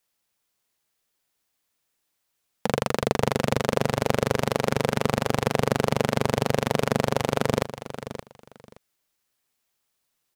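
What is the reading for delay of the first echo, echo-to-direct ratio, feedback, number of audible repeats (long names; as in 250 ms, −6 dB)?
572 ms, −12.0 dB, 19%, 2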